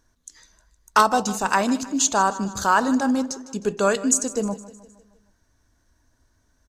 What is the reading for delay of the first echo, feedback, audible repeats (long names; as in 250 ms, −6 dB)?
155 ms, 53%, 4